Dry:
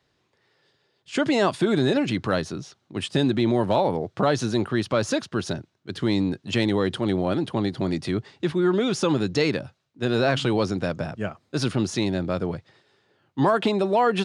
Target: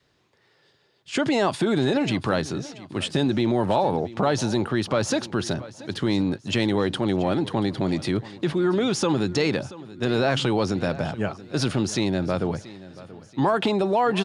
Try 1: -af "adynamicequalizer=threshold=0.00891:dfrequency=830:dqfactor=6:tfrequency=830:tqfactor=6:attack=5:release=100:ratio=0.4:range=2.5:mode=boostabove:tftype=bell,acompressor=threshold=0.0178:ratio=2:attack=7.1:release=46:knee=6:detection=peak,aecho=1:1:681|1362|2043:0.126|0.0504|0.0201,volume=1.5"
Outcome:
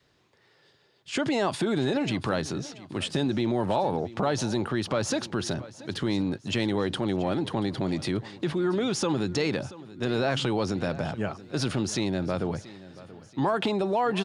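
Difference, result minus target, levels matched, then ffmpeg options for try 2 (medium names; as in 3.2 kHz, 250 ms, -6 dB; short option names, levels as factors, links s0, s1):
compression: peak gain reduction +4 dB
-af "adynamicequalizer=threshold=0.00891:dfrequency=830:dqfactor=6:tfrequency=830:tqfactor=6:attack=5:release=100:ratio=0.4:range=2.5:mode=boostabove:tftype=bell,acompressor=threshold=0.0473:ratio=2:attack=7.1:release=46:knee=6:detection=peak,aecho=1:1:681|1362|2043:0.126|0.0504|0.0201,volume=1.5"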